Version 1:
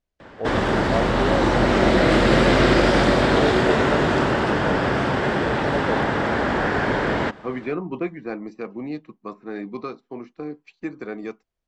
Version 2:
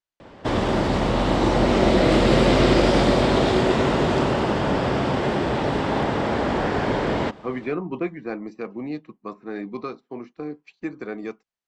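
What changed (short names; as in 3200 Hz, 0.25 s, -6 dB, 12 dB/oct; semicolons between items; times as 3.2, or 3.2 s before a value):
first voice: muted; background: add bell 1600 Hz -7.5 dB 0.72 oct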